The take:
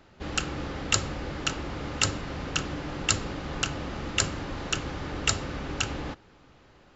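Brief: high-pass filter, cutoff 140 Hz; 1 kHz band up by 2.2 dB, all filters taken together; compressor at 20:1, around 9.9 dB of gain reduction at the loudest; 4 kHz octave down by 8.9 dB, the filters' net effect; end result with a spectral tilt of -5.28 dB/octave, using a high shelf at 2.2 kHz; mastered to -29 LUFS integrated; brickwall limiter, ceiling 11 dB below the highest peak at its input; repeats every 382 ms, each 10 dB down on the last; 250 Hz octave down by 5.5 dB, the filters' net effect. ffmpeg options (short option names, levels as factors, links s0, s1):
-af "highpass=140,equalizer=f=250:t=o:g=-7,equalizer=f=1000:t=o:g=6,highshelf=f=2200:g=-8.5,equalizer=f=4000:t=o:g=-5,acompressor=threshold=0.02:ratio=20,alimiter=level_in=2.51:limit=0.0631:level=0:latency=1,volume=0.398,aecho=1:1:382|764|1146|1528:0.316|0.101|0.0324|0.0104,volume=4.22"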